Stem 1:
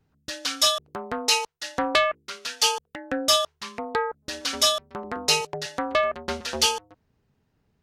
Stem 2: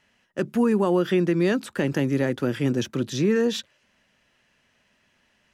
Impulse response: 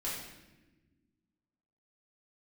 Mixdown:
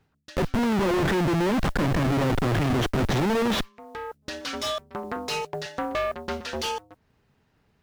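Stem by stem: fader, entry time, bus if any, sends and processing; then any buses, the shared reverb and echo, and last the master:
+2.0 dB, 0.00 s, no send, saturation -24 dBFS, distortion -7 dB; auto duck -20 dB, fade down 0.40 s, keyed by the second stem
+3.0 dB, 0.00 s, no send, band-stop 2.6 kHz; Schmitt trigger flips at -33.5 dBFS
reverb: none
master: low-pass 2.6 kHz 6 dB/octave; modulation noise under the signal 32 dB; tape noise reduction on one side only encoder only

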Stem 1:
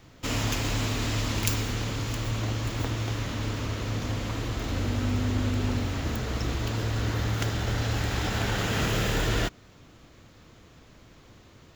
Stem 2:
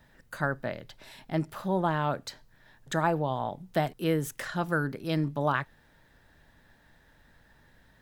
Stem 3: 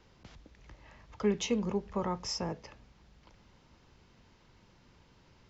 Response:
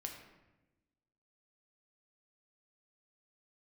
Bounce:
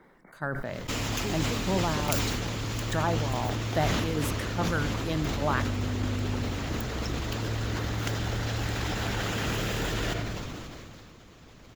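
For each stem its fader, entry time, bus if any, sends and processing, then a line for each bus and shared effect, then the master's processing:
-5.0 dB, 0.65 s, bus A, send -10.5 dB, none
-8.5 dB, 0.00 s, no bus, send -18.5 dB, level rider gain up to 7.5 dB; tremolo saw down 2.4 Hz, depth 65%
+2.5 dB, 0.00 s, bus A, no send, FFT band-pass 150–2300 Hz; auto duck -10 dB, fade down 0.25 s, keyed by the second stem
bus A: 0.0 dB, harmonic-percussive split percussive +8 dB; compression 2:1, threshold -32 dBFS, peak gain reduction 7.5 dB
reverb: on, RT60 1.0 s, pre-delay 3 ms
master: decay stretcher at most 21 dB/s

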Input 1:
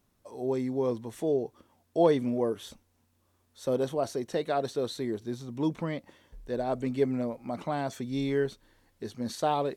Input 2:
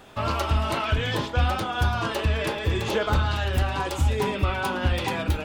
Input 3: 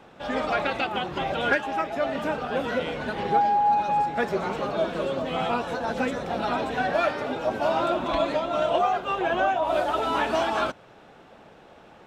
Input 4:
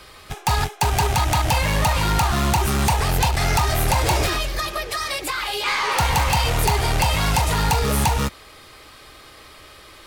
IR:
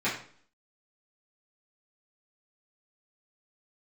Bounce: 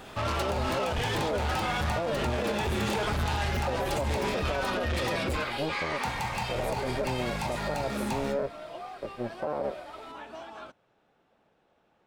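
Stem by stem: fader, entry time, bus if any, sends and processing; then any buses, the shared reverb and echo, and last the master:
-1.0 dB, 0.00 s, no send, cycle switcher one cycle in 2, muted; boxcar filter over 13 samples; peaking EQ 560 Hz +11.5 dB 0.42 oct
+3.0 dB, 0.00 s, no send, saturation -30 dBFS, distortion -6 dB
-18.5 dB, 0.00 s, no send, none
-14.0 dB, 0.05 s, send -7 dB, peaking EQ 14 kHz -7 dB 0.89 oct; compression 2:1, threshold -22 dBFS, peak gain reduction 3.5 dB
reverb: on, RT60 0.50 s, pre-delay 3 ms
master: peak limiter -21 dBFS, peak gain reduction 14 dB

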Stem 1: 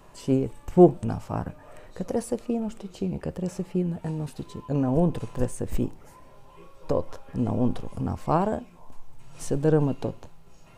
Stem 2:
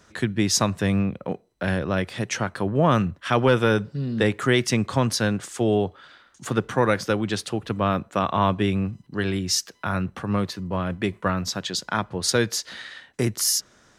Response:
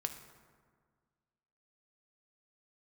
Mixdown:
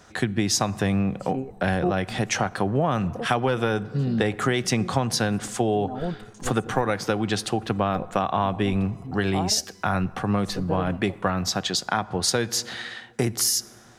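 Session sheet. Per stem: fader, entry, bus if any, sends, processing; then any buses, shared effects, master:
-6.5 dB, 1.05 s, no send, reverb removal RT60 1.7 s
+1.5 dB, 0.00 s, send -11.5 dB, none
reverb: on, RT60 1.7 s, pre-delay 3 ms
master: peaking EQ 760 Hz +10 dB 0.21 oct; compression 6:1, threshold -19 dBFS, peak gain reduction 10 dB

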